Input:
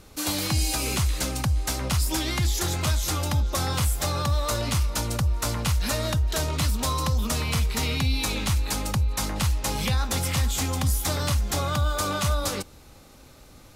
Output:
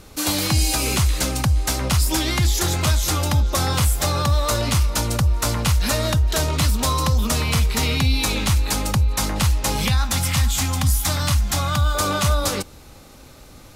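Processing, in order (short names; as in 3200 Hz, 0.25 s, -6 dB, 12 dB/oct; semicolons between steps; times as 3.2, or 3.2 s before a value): 9.88–11.95 bell 430 Hz -13.5 dB 0.72 oct; gain +5.5 dB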